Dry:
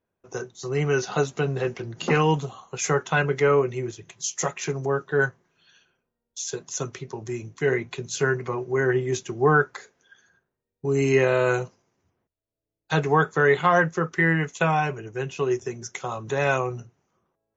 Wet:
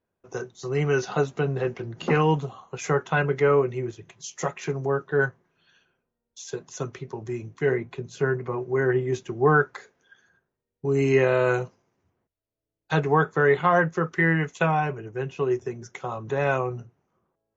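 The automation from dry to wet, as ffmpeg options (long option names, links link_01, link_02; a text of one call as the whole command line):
ffmpeg -i in.wav -af "asetnsamples=nb_out_samples=441:pad=0,asendcmd='1.13 lowpass f 2200;7.72 lowpass f 1100;8.54 lowpass f 1900;9.46 lowpass f 3200;13 lowpass f 2000;13.92 lowpass f 3600;14.66 lowpass f 1700',lowpass=frequency=4300:poles=1" out.wav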